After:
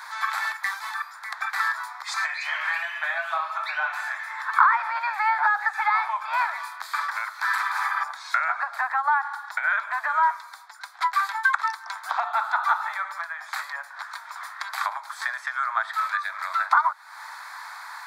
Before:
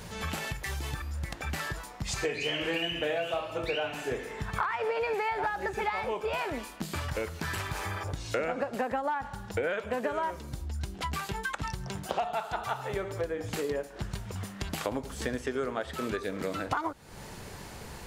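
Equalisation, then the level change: steep high-pass 580 Hz 96 dB/oct; band shelf 2000 Hz +15 dB 2.6 oct; fixed phaser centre 1200 Hz, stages 4; 0.0 dB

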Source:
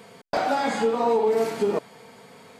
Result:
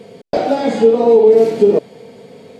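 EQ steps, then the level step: resonant low shelf 750 Hz +14 dB, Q 1.5; bell 3300 Hz +9 dB 2.5 oct; -4.5 dB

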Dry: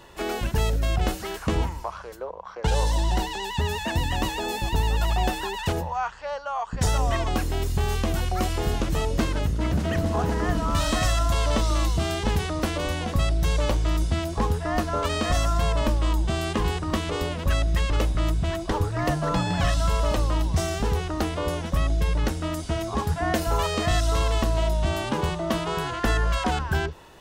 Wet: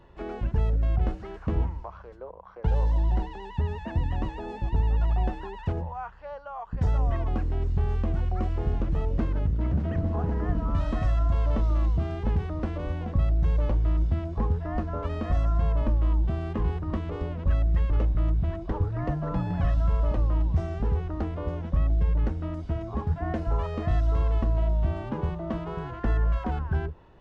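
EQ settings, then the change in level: low shelf 190 Hz +7 dB; dynamic EQ 3700 Hz, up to -4 dB, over -42 dBFS, Q 1.2; tape spacing loss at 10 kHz 32 dB; -6.0 dB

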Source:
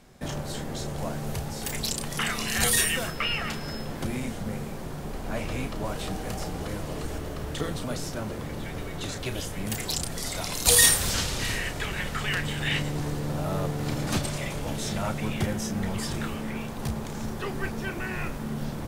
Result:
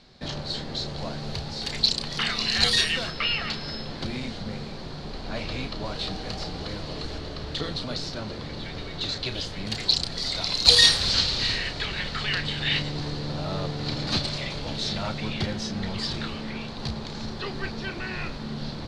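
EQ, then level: synth low-pass 4300 Hz, resonance Q 6.1; -1.5 dB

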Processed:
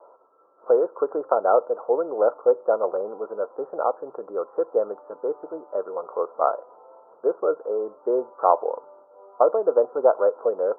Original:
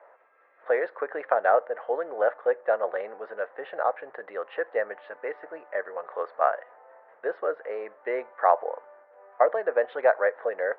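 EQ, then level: rippled Chebyshev low-pass 1400 Hz, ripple 6 dB; low shelf 420 Hz +11.5 dB; +4.0 dB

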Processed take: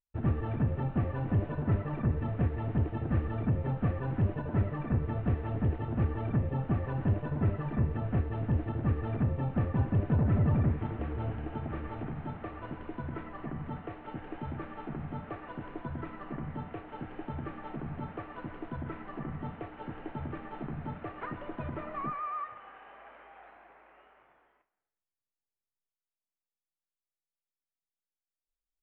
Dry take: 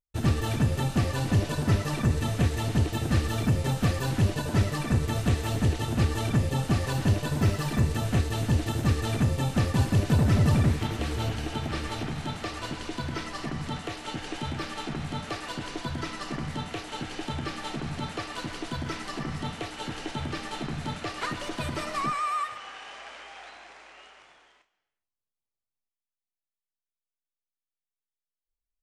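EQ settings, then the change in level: Gaussian blur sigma 4.6 samples; -4.5 dB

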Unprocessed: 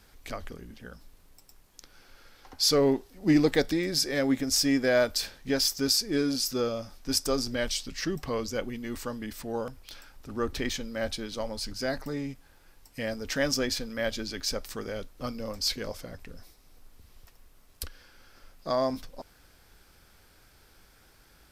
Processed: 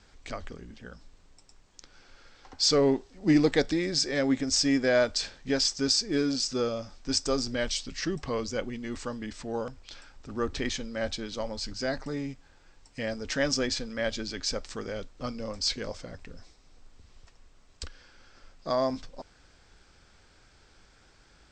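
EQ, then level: steep low-pass 8200 Hz 96 dB/oct; 0.0 dB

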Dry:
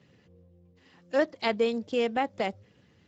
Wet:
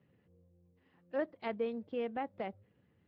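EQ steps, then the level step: air absorption 450 m; -8.5 dB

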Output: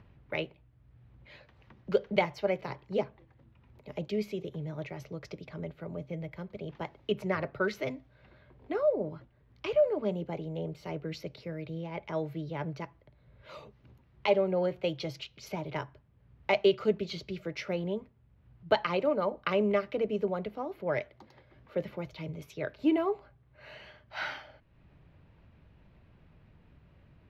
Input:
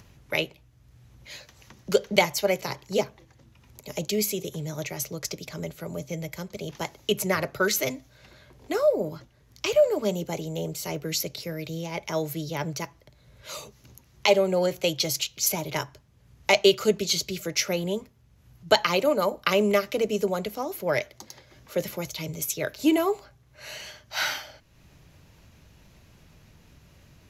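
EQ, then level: dynamic EQ 5700 Hz, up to +6 dB, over -44 dBFS, Q 2.1; air absorption 440 m; -4.0 dB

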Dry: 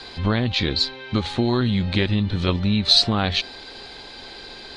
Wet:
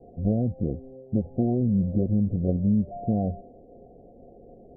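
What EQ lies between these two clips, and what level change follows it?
rippled Chebyshev low-pass 730 Hz, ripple 6 dB; 0.0 dB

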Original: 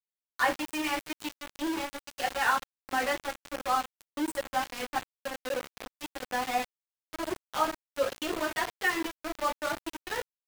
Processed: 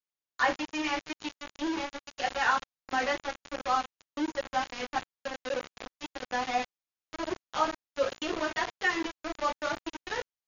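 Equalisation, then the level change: brick-wall FIR low-pass 7000 Hz; 0.0 dB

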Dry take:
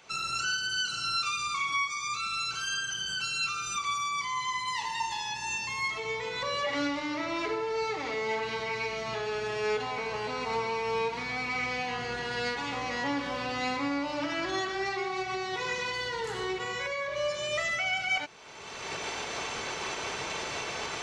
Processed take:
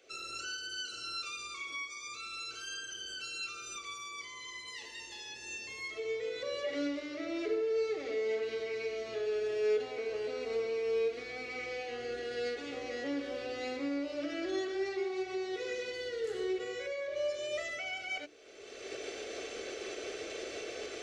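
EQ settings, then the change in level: bell 460 Hz +10 dB 2.3 oct; notches 50/100/150/200/250/300 Hz; fixed phaser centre 390 Hz, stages 4; -8.5 dB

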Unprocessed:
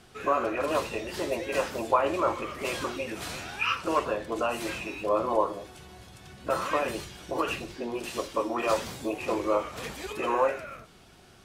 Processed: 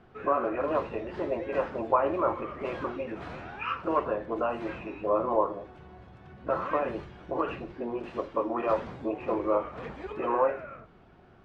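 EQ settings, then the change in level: LPF 1500 Hz 12 dB/oct; notches 50/100 Hz; 0.0 dB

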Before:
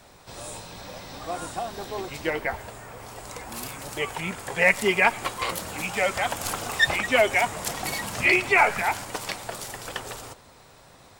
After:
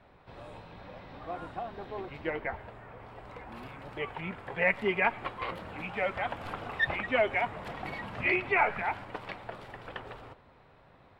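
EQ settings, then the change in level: air absorption 480 m; bell 2700 Hz +2.5 dB 1.8 oct; -5.0 dB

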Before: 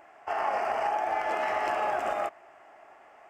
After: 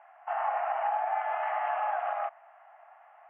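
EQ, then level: elliptic band-pass 710–3200 Hz, stop band 40 dB; air absorption 330 m; high shelf 2500 Hz -10 dB; +2.5 dB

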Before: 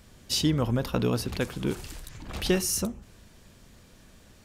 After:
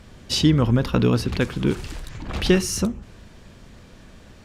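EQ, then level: high shelf 4800 Hz -6.5 dB; high shelf 11000 Hz -12 dB; dynamic EQ 680 Hz, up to -6 dB, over -44 dBFS, Q 1.3; +8.5 dB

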